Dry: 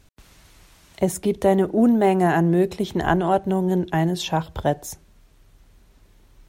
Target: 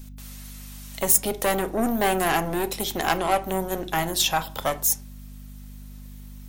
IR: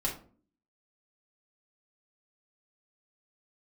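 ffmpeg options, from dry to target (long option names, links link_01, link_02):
-filter_complex "[0:a]aeval=exprs='(tanh(7.08*val(0)+0.55)-tanh(0.55))/7.08':channel_layout=same,aemphasis=mode=production:type=riaa,aeval=exprs='val(0)+0.00794*(sin(2*PI*50*n/s)+sin(2*PI*2*50*n/s)/2+sin(2*PI*3*50*n/s)/3+sin(2*PI*4*50*n/s)/4+sin(2*PI*5*50*n/s)/5)':channel_layout=same,asplit=2[link_01][link_02];[1:a]atrim=start_sample=2205,lowpass=5900[link_03];[link_02][link_03]afir=irnorm=-1:irlink=0,volume=-12.5dB[link_04];[link_01][link_04]amix=inputs=2:normalize=0,volume=1.5dB"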